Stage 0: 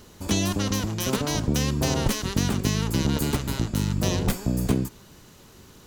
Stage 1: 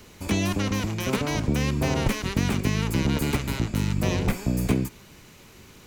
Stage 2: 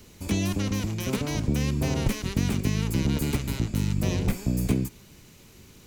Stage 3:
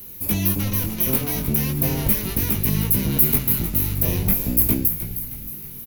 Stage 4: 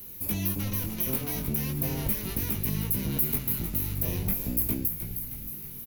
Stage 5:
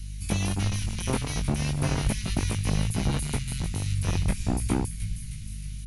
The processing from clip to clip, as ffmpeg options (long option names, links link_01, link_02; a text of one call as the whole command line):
ffmpeg -i in.wav -filter_complex "[0:a]equalizer=frequency=2300:width_type=o:width=0.46:gain=9,acrossover=split=270|1300|2100[link_01][link_02][link_03][link_04];[link_04]alimiter=limit=-24dB:level=0:latency=1:release=103[link_05];[link_01][link_02][link_03][link_05]amix=inputs=4:normalize=0" out.wav
ffmpeg -i in.wav -af "equalizer=frequency=1200:width_type=o:width=2.9:gain=-7" out.wav
ffmpeg -i in.wav -filter_complex "[0:a]aexciter=amount=15.1:drive=7.2:freq=11000,asplit=7[link_01][link_02][link_03][link_04][link_05][link_06][link_07];[link_02]adelay=312,afreqshift=-88,volume=-10dB[link_08];[link_03]adelay=624,afreqshift=-176,volume=-15.8dB[link_09];[link_04]adelay=936,afreqshift=-264,volume=-21.7dB[link_10];[link_05]adelay=1248,afreqshift=-352,volume=-27.5dB[link_11];[link_06]adelay=1560,afreqshift=-440,volume=-33.4dB[link_12];[link_07]adelay=1872,afreqshift=-528,volume=-39.2dB[link_13];[link_01][link_08][link_09][link_10][link_11][link_12][link_13]amix=inputs=7:normalize=0,flanger=delay=18.5:depth=4.6:speed=0.4,volume=4.5dB" out.wav
ffmpeg -i in.wav -af "acompressor=threshold=-27dB:ratio=1.5,volume=-4.5dB" out.wav
ffmpeg -i in.wav -filter_complex "[0:a]aeval=exprs='val(0)+0.01*(sin(2*PI*50*n/s)+sin(2*PI*2*50*n/s)/2+sin(2*PI*3*50*n/s)/3+sin(2*PI*4*50*n/s)/4+sin(2*PI*5*50*n/s)/5)':channel_layout=same,acrossover=split=170|1700|5900[link_01][link_02][link_03][link_04];[link_02]acrusher=bits=4:mix=0:aa=0.5[link_05];[link_01][link_05][link_03][link_04]amix=inputs=4:normalize=0,aresample=22050,aresample=44100,volume=6.5dB" out.wav